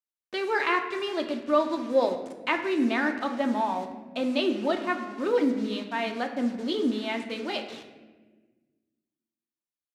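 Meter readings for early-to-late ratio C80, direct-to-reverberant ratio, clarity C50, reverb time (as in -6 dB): 10.5 dB, 3.5 dB, 8.5 dB, 1.4 s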